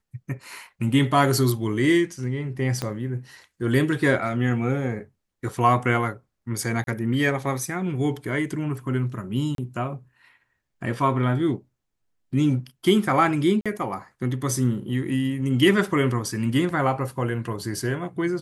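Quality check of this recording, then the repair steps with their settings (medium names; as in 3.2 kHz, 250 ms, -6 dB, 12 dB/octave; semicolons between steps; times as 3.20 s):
2.82 s: pop -13 dBFS
6.84–6.87 s: dropout 32 ms
9.55–9.58 s: dropout 32 ms
13.61–13.66 s: dropout 46 ms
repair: de-click; interpolate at 6.84 s, 32 ms; interpolate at 9.55 s, 32 ms; interpolate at 13.61 s, 46 ms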